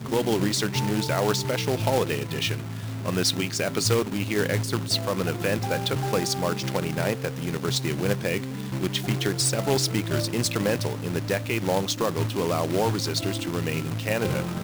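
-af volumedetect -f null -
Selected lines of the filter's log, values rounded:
mean_volume: -25.7 dB
max_volume: -8.6 dB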